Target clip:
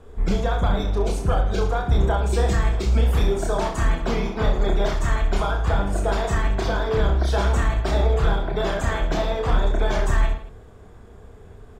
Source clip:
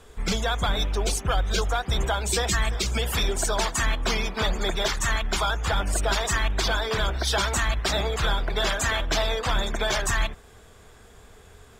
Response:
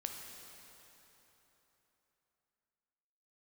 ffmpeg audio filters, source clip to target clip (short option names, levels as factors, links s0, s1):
-filter_complex "[0:a]tiltshelf=f=1400:g=9,asplit=2[s0][s1];[s1]aecho=0:1:30|66|109.2|161|223.2:0.631|0.398|0.251|0.158|0.1[s2];[s0][s2]amix=inputs=2:normalize=0,volume=0.631"